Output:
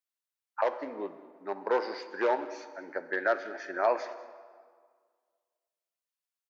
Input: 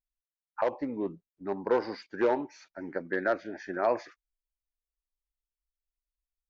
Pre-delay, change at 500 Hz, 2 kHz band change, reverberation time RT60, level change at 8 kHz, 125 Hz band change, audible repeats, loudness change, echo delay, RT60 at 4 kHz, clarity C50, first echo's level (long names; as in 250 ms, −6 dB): 3 ms, −0.5 dB, +2.5 dB, 1.8 s, can't be measured, below −15 dB, 1, −0.5 dB, 193 ms, 1.3 s, 12.0 dB, −20.0 dB